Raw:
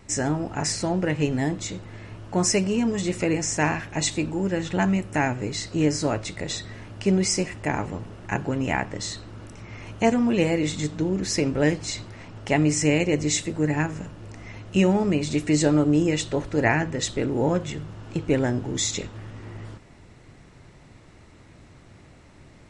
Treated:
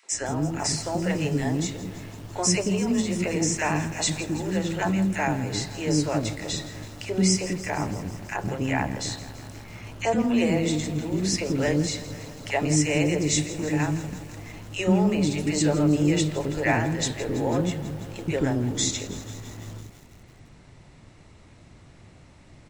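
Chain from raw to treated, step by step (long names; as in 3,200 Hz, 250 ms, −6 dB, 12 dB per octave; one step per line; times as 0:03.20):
three-band delay without the direct sound highs, mids, lows 30/120 ms, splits 390/1,500 Hz
feedback echo at a low word length 165 ms, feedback 80%, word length 7 bits, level −15 dB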